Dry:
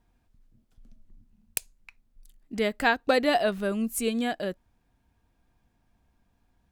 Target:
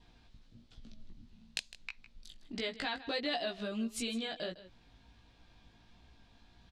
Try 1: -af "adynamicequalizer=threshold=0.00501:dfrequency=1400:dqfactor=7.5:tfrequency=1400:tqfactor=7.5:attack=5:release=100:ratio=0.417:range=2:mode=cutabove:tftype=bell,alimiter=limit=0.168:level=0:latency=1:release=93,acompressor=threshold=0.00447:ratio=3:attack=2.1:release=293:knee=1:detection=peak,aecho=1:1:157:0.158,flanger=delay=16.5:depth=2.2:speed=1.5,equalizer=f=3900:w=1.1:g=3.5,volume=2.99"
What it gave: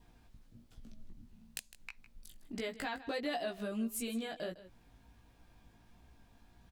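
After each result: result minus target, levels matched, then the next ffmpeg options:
4 kHz band -5.5 dB; 8 kHz band +3.0 dB
-af "adynamicequalizer=threshold=0.00501:dfrequency=1400:dqfactor=7.5:tfrequency=1400:tqfactor=7.5:attack=5:release=100:ratio=0.417:range=2:mode=cutabove:tftype=bell,alimiter=limit=0.168:level=0:latency=1:release=93,acompressor=threshold=0.00447:ratio=3:attack=2.1:release=293:knee=1:detection=peak,aecho=1:1:157:0.158,flanger=delay=16.5:depth=2.2:speed=1.5,equalizer=f=3900:w=1.1:g=13,volume=2.99"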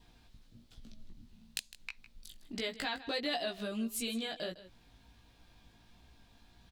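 8 kHz band +2.5 dB
-af "adynamicequalizer=threshold=0.00501:dfrequency=1400:dqfactor=7.5:tfrequency=1400:tqfactor=7.5:attack=5:release=100:ratio=0.417:range=2:mode=cutabove:tftype=bell,lowpass=5900,alimiter=limit=0.168:level=0:latency=1:release=93,acompressor=threshold=0.00447:ratio=3:attack=2.1:release=293:knee=1:detection=peak,aecho=1:1:157:0.158,flanger=delay=16.5:depth=2.2:speed=1.5,equalizer=f=3900:w=1.1:g=13,volume=2.99"

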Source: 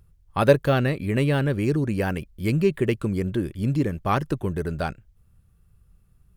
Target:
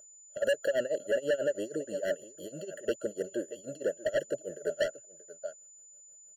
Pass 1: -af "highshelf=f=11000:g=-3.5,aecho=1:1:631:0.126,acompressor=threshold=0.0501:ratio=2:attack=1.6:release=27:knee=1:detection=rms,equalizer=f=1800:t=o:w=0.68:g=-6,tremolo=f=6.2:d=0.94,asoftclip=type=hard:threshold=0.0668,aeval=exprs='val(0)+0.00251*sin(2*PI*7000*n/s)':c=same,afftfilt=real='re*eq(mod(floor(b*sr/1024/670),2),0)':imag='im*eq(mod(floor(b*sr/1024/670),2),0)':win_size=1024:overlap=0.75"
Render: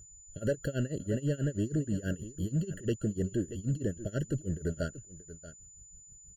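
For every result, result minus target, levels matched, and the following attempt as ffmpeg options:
500 Hz band -6.5 dB; compression: peak gain reduction +3 dB
-af "highshelf=f=11000:g=-3.5,aecho=1:1:631:0.126,acompressor=threshold=0.0501:ratio=2:attack=1.6:release=27:knee=1:detection=rms,highpass=f=600:t=q:w=6.8,equalizer=f=1800:t=o:w=0.68:g=-6,tremolo=f=6.2:d=0.94,asoftclip=type=hard:threshold=0.0668,aeval=exprs='val(0)+0.00251*sin(2*PI*7000*n/s)':c=same,afftfilt=real='re*eq(mod(floor(b*sr/1024/670),2),0)':imag='im*eq(mod(floor(b*sr/1024/670),2),0)':win_size=1024:overlap=0.75"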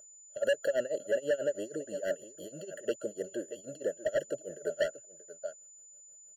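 compression: peak gain reduction +3 dB
-af "highshelf=f=11000:g=-3.5,aecho=1:1:631:0.126,acompressor=threshold=0.1:ratio=2:attack=1.6:release=27:knee=1:detection=rms,highpass=f=600:t=q:w=6.8,equalizer=f=1800:t=o:w=0.68:g=-6,tremolo=f=6.2:d=0.94,asoftclip=type=hard:threshold=0.0668,aeval=exprs='val(0)+0.00251*sin(2*PI*7000*n/s)':c=same,afftfilt=real='re*eq(mod(floor(b*sr/1024/670),2),0)':imag='im*eq(mod(floor(b*sr/1024/670),2),0)':win_size=1024:overlap=0.75"

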